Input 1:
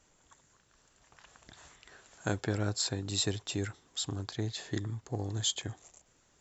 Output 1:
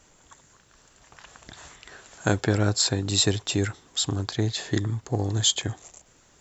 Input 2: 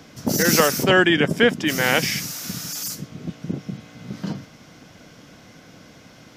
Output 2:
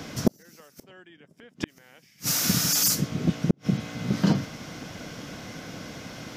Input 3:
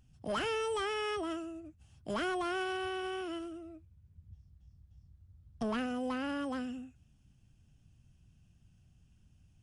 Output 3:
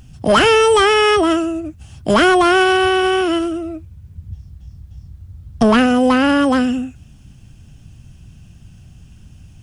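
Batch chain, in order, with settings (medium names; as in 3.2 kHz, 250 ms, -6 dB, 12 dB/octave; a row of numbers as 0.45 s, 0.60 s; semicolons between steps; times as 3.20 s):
inverted gate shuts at -14 dBFS, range -42 dB; peak normalisation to -6 dBFS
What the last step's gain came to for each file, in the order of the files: +9.5 dB, +7.0 dB, +22.5 dB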